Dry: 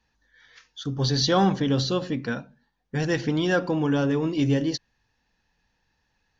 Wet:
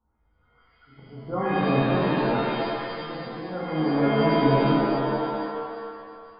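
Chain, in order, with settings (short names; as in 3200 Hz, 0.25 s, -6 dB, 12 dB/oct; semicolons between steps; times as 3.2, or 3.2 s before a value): brick-wall FIR low-pass 1500 Hz; auto swell 0.758 s; shimmer reverb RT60 2 s, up +7 st, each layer -2 dB, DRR -6.5 dB; gain -5 dB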